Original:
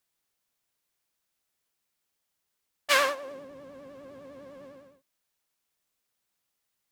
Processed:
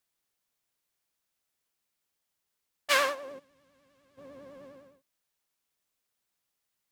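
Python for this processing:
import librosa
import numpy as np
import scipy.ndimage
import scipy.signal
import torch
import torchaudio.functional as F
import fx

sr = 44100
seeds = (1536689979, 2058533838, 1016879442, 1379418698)

y = fx.tone_stack(x, sr, knobs='5-5-5', at=(3.38, 4.17), fade=0.02)
y = F.gain(torch.from_numpy(y), -2.0).numpy()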